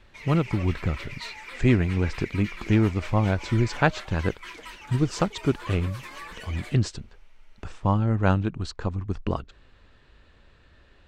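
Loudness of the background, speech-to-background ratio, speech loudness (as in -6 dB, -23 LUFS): -40.0 LUFS, 14.0 dB, -26.0 LUFS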